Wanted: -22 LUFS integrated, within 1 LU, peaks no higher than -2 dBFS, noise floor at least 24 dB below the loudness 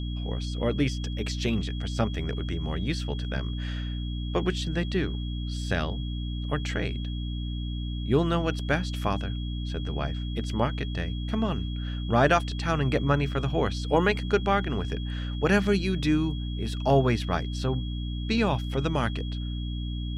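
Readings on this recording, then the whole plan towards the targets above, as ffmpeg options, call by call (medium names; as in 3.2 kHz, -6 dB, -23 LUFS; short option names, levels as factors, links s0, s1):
hum 60 Hz; highest harmonic 300 Hz; hum level -29 dBFS; steady tone 3.3 kHz; tone level -43 dBFS; loudness -28.5 LUFS; peak level -9.5 dBFS; loudness target -22.0 LUFS
-> -af "bandreject=f=60:t=h:w=6,bandreject=f=120:t=h:w=6,bandreject=f=180:t=h:w=6,bandreject=f=240:t=h:w=6,bandreject=f=300:t=h:w=6"
-af "bandreject=f=3300:w=30"
-af "volume=2.11"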